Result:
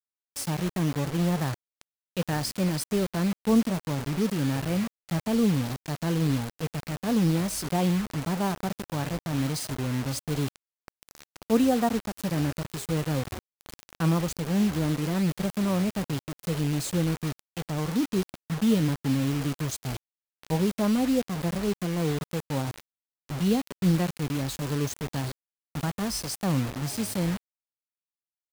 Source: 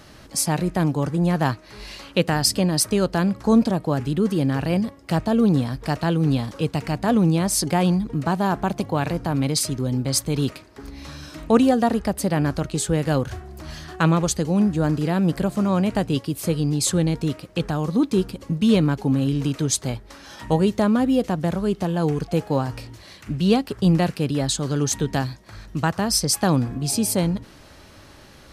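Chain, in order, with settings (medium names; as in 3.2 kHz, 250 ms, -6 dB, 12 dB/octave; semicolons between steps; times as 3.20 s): 18.01–18.89 s: high-pass 51 Hz 24 dB/octave; harmonic-percussive split percussive -9 dB; bit crusher 5-bit; trim -5 dB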